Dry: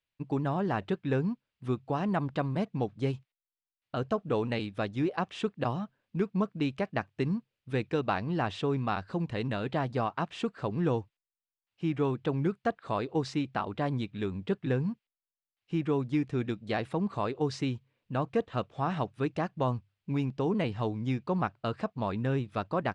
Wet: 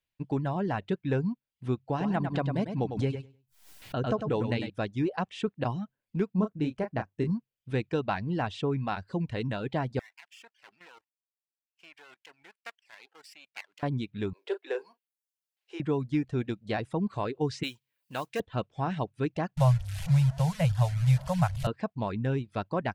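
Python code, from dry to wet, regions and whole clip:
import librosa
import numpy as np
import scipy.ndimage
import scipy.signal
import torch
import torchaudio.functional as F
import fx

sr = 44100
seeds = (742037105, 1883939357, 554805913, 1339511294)

y = fx.chain(x, sr, fx.echo_feedback(ms=100, feedback_pct=25, wet_db=-5),
    fx.pre_swell(db_per_s=87.0), at=(1.9, 4.7))
y = fx.chain(y, sr, fx.peak_eq(hz=3200.0, db=-7.0, octaves=2.3),
    fx.doubler(ms=33.0, db=-6.0), at=(6.35, 7.3))
y = fx.chain(y, sr, fx.lower_of_two(delay_ms=0.39),
    fx.highpass(hz=1500.0, slope=12),
    fx.level_steps(step_db=13), at=(9.99, 13.83))
y = fx.chain(y, sr, fx.cheby1_highpass(hz=370.0, order=5),
    fx.high_shelf(hz=4600.0, db=3.5),
    fx.doubler(ms=38.0, db=-9.0), at=(14.33, 15.8))
y = fx.chain(y, sr, fx.tilt_eq(slope=4.5),
    fx.mod_noise(seeds[0], snr_db=22), at=(17.63, 18.4))
y = fx.chain(y, sr, fx.delta_mod(bps=64000, step_db=-35.0),
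    fx.ellip_bandstop(low_hz=160.0, high_hz=570.0, order=3, stop_db=40),
    fx.low_shelf(hz=420.0, db=11.5), at=(19.57, 21.67))
y = fx.notch(y, sr, hz=1200.0, q=9.1)
y = fx.dereverb_blind(y, sr, rt60_s=0.55)
y = fx.low_shelf(y, sr, hz=150.0, db=4.0)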